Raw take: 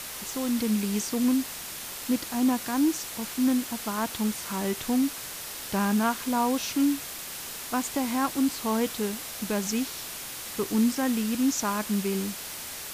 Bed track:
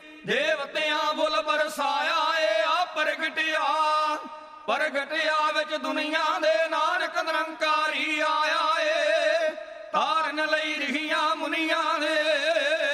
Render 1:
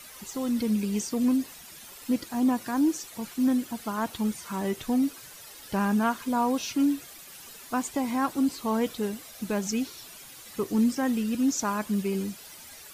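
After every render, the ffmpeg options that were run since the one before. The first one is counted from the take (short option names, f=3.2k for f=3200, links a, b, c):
-af "afftdn=nr=12:nf=-38"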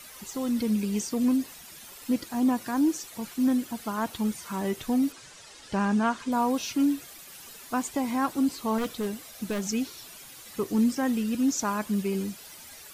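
-filter_complex "[0:a]asettb=1/sr,asplit=3[a][b][c];[a]atrim=end=5.124[d];[b]atrim=start=5.12:end=6.32,asetpts=PTS-STARTPTS,afade=t=in:d=0.004:c=qsin,afade=t=out:st=1.196:d=0.004:c=qsin,lowpass=f=8.4k:w=0.5412,lowpass=f=8.4k:w=1.3066[e];[c]atrim=start=6.316[f];[d][e]acrossfade=d=0.004:c1=hsin:c2=qsin[g];[g][f]acrossfade=d=0.004:c1=qsin:c2=hsin,asettb=1/sr,asplit=3[h][i][j];[h]atrim=end=8.784[k];[i]atrim=start=8.78:end=9.63,asetpts=PTS-STARTPTS,afade=t=in:d=0.004:c=qsin,afade=t=out:st=0.846:d=0.004:c=qsin,aeval=exprs='0.075*(abs(mod(val(0)/0.075+3,4)-2)-1)':c=same[l];[j]atrim=start=9.626[m];[k][l]acrossfade=d=0.004:c1=hsin:c2=qsin[n];[n][m]acrossfade=d=0.004:c1=qsin:c2=hsin"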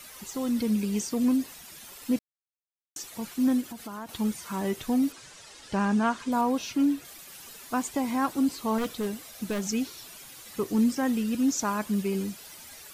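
-filter_complex "[0:a]asettb=1/sr,asplit=3[a][b][c];[a]atrim=end=3.614[d];[b]atrim=start=3.61:end=4.09,asetpts=PTS-STARTPTS,afade=t=in:d=0.004:c=qsin,afade=t=out:st=0.476:d=0.004:c=qsin,acompressor=threshold=-35dB:ratio=5:attack=3.2:release=140:knee=1:detection=peak[e];[c]atrim=start=4.086[f];[d][e]acrossfade=d=0.004:c1=hsin:c2=qsin[g];[g][f]acrossfade=d=0.004:c1=qsin:c2=hsin,asettb=1/sr,asplit=3[h][i][j];[h]atrim=end=6.414[k];[i]atrim=start=6.41:end=7.05,asetpts=PTS-STARTPTS,afade=t=in:d=0.004:c=qsin,afade=t=out:st=0.636:d=0.004:c=qsin,highshelf=f=4.4k:g=-5.5[l];[j]atrim=start=7.046[m];[k][l]acrossfade=d=0.004:c1=hsin:c2=qsin[n];[n][m]acrossfade=d=0.004:c1=qsin:c2=hsin,asplit=3[o][p][q];[o]atrim=end=2.19,asetpts=PTS-STARTPTS,afade=t=out:st=2.186:d=0.004:c=hsin[r];[p]atrim=start=2.19:end=2.96,asetpts=PTS-STARTPTS,volume=0[s];[q]atrim=start=2.96,asetpts=PTS-STARTPTS,afade=t=in:d=0.004:c=hsin[t];[r][s][t]concat=n=3:v=0:a=1"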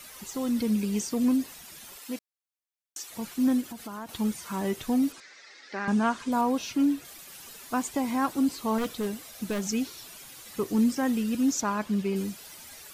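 -filter_complex "[0:a]asettb=1/sr,asplit=3[a][b][c];[a]atrim=end=1.994[d];[b]atrim=start=1.99:end=3.09,asetpts=PTS-STARTPTS,afade=t=in:d=0.004:c=qsin,afade=t=out:st=1.096:d=0.004:c=qsin,highpass=f=730:p=1[e];[c]atrim=start=3.086[f];[d][e]acrossfade=d=0.004:c1=hsin:c2=qsin[g];[g][f]acrossfade=d=0.004:c1=qsin:c2=hsin,asettb=1/sr,asplit=3[h][i][j];[h]atrim=end=5.204[k];[i]atrim=start=5.2:end=5.88,asetpts=PTS-STARTPTS,afade=t=in:d=0.004:c=qsin,afade=t=out:st=0.676:d=0.004:c=qsin,highpass=f=290:w=0.5412,highpass=f=290:w=1.3066,equalizer=f=310:t=q:w=4:g=-5,equalizer=f=450:t=q:w=4:g=-5,equalizer=f=650:t=q:w=4:g=-6,equalizer=f=970:t=q:w=4:g=-9,equalizer=f=2k:t=q:w=4:g=9,equalizer=f=3k:t=q:w=4:g=-9,lowpass=f=5.4k:w=0.5412,lowpass=f=5.4k:w=1.3066[l];[j]atrim=start=5.876[m];[k][l]acrossfade=d=0.004:c1=hsin:c2=qsin[n];[n][m]acrossfade=d=0.004:c1=qsin:c2=hsin,asettb=1/sr,asplit=3[o][p][q];[o]atrim=end=11.614[r];[p]atrim=start=11.61:end=12.16,asetpts=PTS-STARTPTS,afade=t=in:d=0.004:c=qsin,afade=t=out:st=0.546:d=0.004:c=qsin,acrossover=split=5700[s][t];[t]acompressor=threshold=-55dB:ratio=4:attack=1:release=60[u];[s][u]amix=inputs=2:normalize=0[v];[q]atrim=start=12.156[w];[r][v]acrossfade=d=0.004:c1=hsin:c2=qsin[x];[x][w]acrossfade=d=0.004:c1=qsin:c2=hsin"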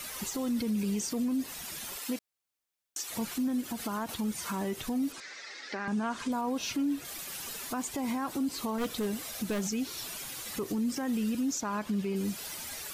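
-filter_complex "[0:a]asplit=2[a][b];[b]acompressor=threshold=-35dB:ratio=6,volume=-0.5dB[c];[a][c]amix=inputs=2:normalize=0,alimiter=level_in=0.5dB:limit=-24dB:level=0:latency=1:release=98,volume=-0.5dB"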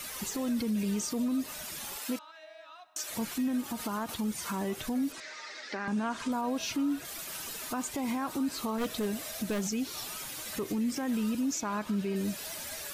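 -filter_complex "[1:a]volume=-27dB[a];[0:a][a]amix=inputs=2:normalize=0"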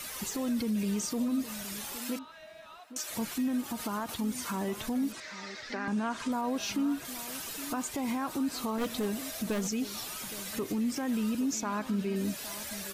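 -filter_complex "[0:a]asplit=2[a][b];[b]adelay=816.3,volume=-14dB,highshelf=f=4k:g=-18.4[c];[a][c]amix=inputs=2:normalize=0"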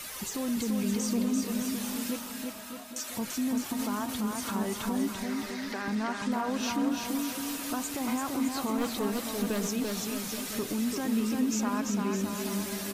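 -af "aecho=1:1:340|612|829.6|1004|1143:0.631|0.398|0.251|0.158|0.1"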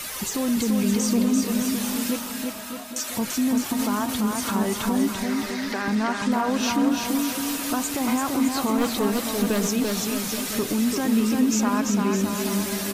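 -af "volume=7.5dB"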